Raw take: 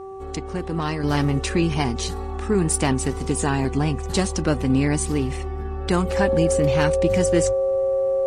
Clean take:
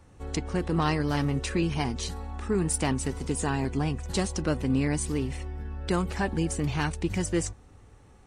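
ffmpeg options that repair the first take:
-af "bandreject=f=385.8:t=h:w=4,bandreject=f=771.6:t=h:w=4,bandreject=f=1.1574k:t=h:w=4,bandreject=f=540:w=30,asetnsamples=n=441:p=0,asendcmd='1.03 volume volume -6dB',volume=0dB"

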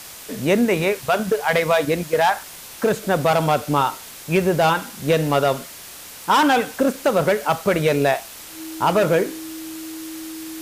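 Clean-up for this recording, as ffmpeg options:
-af "bandreject=f=320:w=30,afwtdn=0.014"

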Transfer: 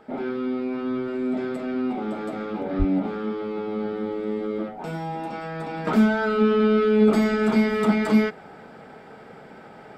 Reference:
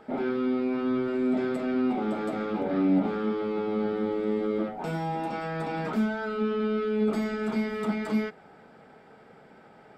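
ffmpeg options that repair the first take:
-filter_complex "[0:a]asplit=3[a][b][c];[a]afade=t=out:st=2.78:d=0.02[d];[b]highpass=f=140:w=0.5412,highpass=f=140:w=1.3066,afade=t=in:st=2.78:d=0.02,afade=t=out:st=2.9:d=0.02[e];[c]afade=t=in:st=2.9:d=0.02[f];[d][e][f]amix=inputs=3:normalize=0,asetnsamples=n=441:p=0,asendcmd='5.87 volume volume -8.5dB',volume=0dB"

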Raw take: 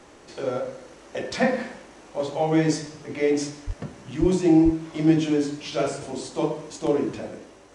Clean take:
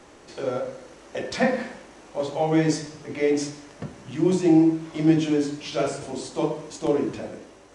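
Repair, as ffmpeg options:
-filter_complex "[0:a]asplit=3[a][b][c];[a]afade=t=out:st=3.66:d=0.02[d];[b]highpass=f=140:w=0.5412,highpass=f=140:w=1.3066,afade=t=in:st=3.66:d=0.02,afade=t=out:st=3.78:d=0.02[e];[c]afade=t=in:st=3.78:d=0.02[f];[d][e][f]amix=inputs=3:normalize=0,asplit=3[g][h][i];[g]afade=t=out:st=4.2:d=0.02[j];[h]highpass=f=140:w=0.5412,highpass=f=140:w=1.3066,afade=t=in:st=4.2:d=0.02,afade=t=out:st=4.32:d=0.02[k];[i]afade=t=in:st=4.32:d=0.02[l];[j][k][l]amix=inputs=3:normalize=0,asplit=3[m][n][o];[m]afade=t=out:st=4.64:d=0.02[p];[n]highpass=f=140:w=0.5412,highpass=f=140:w=1.3066,afade=t=in:st=4.64:d=0.02,afade=t=out:st=4.76:d=0.02[q];[o]afade=t=in:st=4.76:d=0.02[r];[p][q][r]amix=inputs=3:normalize=0"

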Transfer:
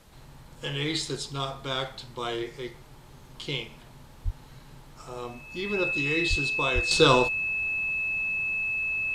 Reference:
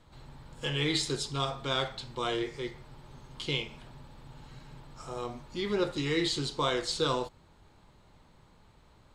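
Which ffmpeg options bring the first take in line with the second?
-filter_complex "[0:a]bandreject=f=2.6k:w=30,asplit=3[a][b][c];[a]afade=t=out:st=4.24:d=0.02[d];[b]highpass=f=140:w=0.5412,highpass=f=140:w=1.3066,afade=t=in:st=4.24:d=0.02,afade=t=out:st=4.36:d=0.02[e];[c]afade=t=in:st=4.36:d=0.02[f];[d][e][f]amix=inputs=3:normalize=0,asplit=3[g][h][i];[g]afade=t=out:st=6.29:d=0.02[j];[h]highpass=f=140:w=0.5412,highpass=f=140:w=1.3066,afade=t=in:st=6.29:d=0.02,afade=t=out:st=6.41:d=0.02[k];[i]afade=t=in:st=6.41:d=0.02[l];[j][k][l]amix=inputs=3:normalize=0,asplit=3[m][n][o];[m]afade=t=out:st=6.74:d=0.02[p];[n]highpass=f=140:w=0.5412,highpass=f=140:w=1.3066,afade=t=in:st=6.74:d=0.02,afade=t=out:st=6.86:d=0.02[q];[o]afade=t=in:st=6.86:d=0.02[r];[p][q][r]amix=inputs=3:normalize=0,agate=range=-21dB:threshold=-41dB,asetnsamples=n=441:p=0,asendcmd='6.91 volume volume -10dB',volume=0dB"

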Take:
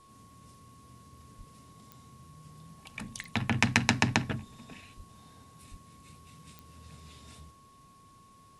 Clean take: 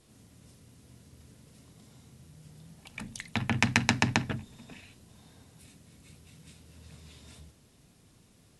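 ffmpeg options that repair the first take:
-filter_complex "[0:a]adeclick=t=4,bandreject=f=1.1k:w=30,asplit=3[a][b][c];[a]afade=t=out:st=1.37:d=0.02[d];[b]highpass=f=140:w=0.5412,highpass=f=140:w=1.3066,afade=t=in:st=1.37:d=0.02,afade=t=out:st=1.49:d=0.02[e];[c]afade=t=in:st=1.49:d=0.02[f];[d][e][f]amix=inputs=3:normalize=0,asplit=3[g][h][i];[g]afade=t=out:st=4.96:d=0.02[j];[h]highpass=f=140:w=0.5412,highpass=f=140:w=1.3066,afade=t=in:st=4.96:d=0.02,afade=t=out:st=5.08:d=0.02[k];[i]afade=t=in:st=5.08:d=0.02[l];[j][k][l]amix=inputs=3:normalize=0,asplit=3[m][n][o];[m]afade=t=out:st=5.7:d=0.02[p];[n]highpass=f=140:w=0.5412,highpass=f=140:w=1.3066,afade=t=in:st=5.7:d=0.02,afade=t=out:st=5.82:d=0.02[q];[o]afade=t=in:st=5.82:d=0.02[r];[p][q][r]amix=inputs=3:normalize=0"

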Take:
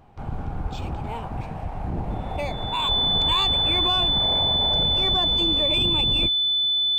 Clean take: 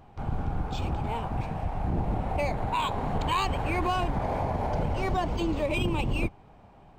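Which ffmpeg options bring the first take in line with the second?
-filter_complex "[0:a]bandreject=f=3.5k:w=30,asplit=3[a][b][c];[a]afade=t=out:st=0.62:d=0.02[d];[b]highpass=f=140:w=0.5412,highpass=f=140:w=1.3066,afade=t=in:st=0.62:d=0.02,afade=t=out:st=0.74:d=0.02[e];[c]afade=t=in:st=0.74:d=0.02[f];[d][e][f]amix=inputs=3:normalize=0,asplit=3[g][h][i];[g]afade=t=out:st=2.88:d=0.02[j];[h]highpass=f=140:w=0.5412,highpass=f=140:w=1.3066,afade=t=in:st=2.88:d=0.02,afade=t=out:st=3:d=0.02[k];[i]afade=t=in:st=3:d=0.02[l];[j][k][l]amix=inputs=3:normalize=0,asplit=3[m][n][o];[m]afade=t=out:st=3.28:d=0.02[p];[n]highpass=f=140:w=0.5412,highpass=f=140:w=1.3066,afade=t=in:st=3.28:d=0.02,afade=t=out:st=3.4:d=0.02[q];[o]afade=t=in:st=3.4:d=0.02[r];[p][q][r]amix=inputs=3:normalize=0"

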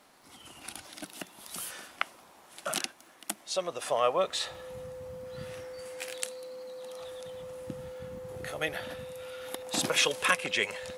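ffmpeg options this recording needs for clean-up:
-af "adeclick=t=4,bandreject=f=510:w=30"

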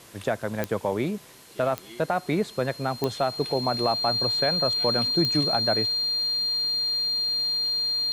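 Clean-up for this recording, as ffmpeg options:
-af "adeclick=t=4,bandreject=f=4.2k:w=30,afwtdn=0.0032"

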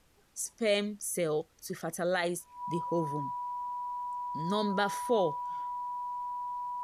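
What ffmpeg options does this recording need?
-af "bandreject=f=980:w=30,agate=range=-21dB:threshold=-51dB"

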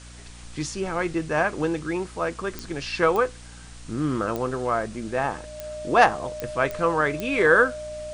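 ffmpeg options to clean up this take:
-af "adeclick=t=4,bandreject=f=59.5:t=h:w=4,bandreject=f=119:t=h:w=4,bandreject=f=178.5:t=h:w=4,bandreject=f=238:t=h:w=4,bandreject=f=297.5:t=h:w=4,bandreject=f=610:w=30,afwtdn=0.005"

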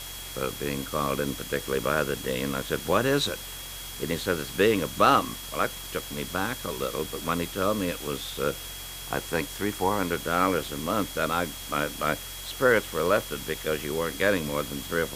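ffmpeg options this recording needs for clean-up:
-af "bandreject=f=45.2:t=h:w=4,bandreject=f=90.4:t=h:w=4,bandreject=f=135.6:t=h:w=4,bandreject=f=3.3k:w=30,afftdn=nr=30:nf=-39"

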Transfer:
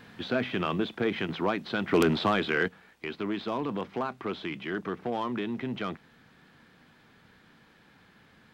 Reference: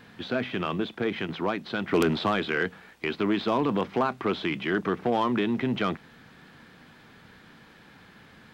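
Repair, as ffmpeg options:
-af "asetnsamples=n=441:p=0,asendcmd='2.68 volume volume 6.5dB',volume=0dB"

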